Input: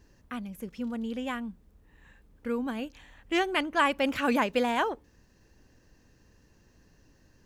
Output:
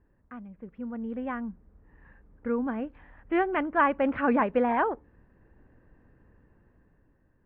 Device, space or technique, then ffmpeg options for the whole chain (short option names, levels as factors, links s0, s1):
action camera in a waterproof case: -af "lowpass=f=1800:w=0.5412,lowpass=f=1800:w=1.3066,dynaudnorm=f=300:g=7:m=2.66,volume=0.501" -ar 48000 -c:a aac -b:a 48k